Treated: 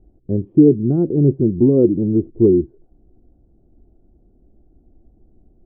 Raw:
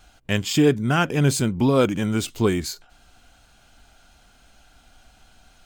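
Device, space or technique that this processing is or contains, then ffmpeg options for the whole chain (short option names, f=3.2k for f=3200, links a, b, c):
under water: -af "lowpass=f=450:w=0.5412,lowpass=f=450:w=1.3066,equalizer=f=350:t=o:w=0.4:g=11,volume=3.5dB"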